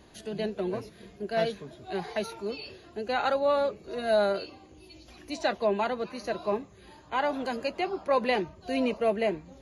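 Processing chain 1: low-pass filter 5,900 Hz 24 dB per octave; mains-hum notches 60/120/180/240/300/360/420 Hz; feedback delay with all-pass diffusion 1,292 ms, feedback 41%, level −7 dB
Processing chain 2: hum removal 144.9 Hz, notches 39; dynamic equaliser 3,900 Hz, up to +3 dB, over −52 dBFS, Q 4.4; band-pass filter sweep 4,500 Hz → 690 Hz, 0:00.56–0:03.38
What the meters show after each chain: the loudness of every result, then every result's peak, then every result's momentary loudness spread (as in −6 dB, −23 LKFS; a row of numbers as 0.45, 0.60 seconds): −30.0, −33.0 LKFS; −13.5, −17.5 dBFS; 10, 20 LU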